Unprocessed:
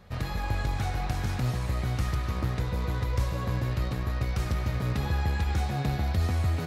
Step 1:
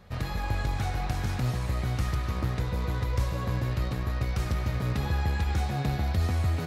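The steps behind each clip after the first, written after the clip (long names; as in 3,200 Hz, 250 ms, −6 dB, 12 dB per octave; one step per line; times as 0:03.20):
no processing that can be heard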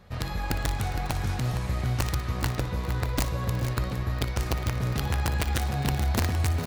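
wrap-around overflow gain 19 dB
on a send: multi-tap delay 59/407/462 ms −14/−17.5/−11 dB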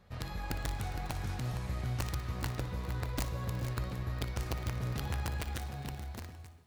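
fade-out on the ending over 1.55 s
four-comb reverb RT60 3.3 s, combs from 33 ms, DRR 18.5 dB
level −8.5 dB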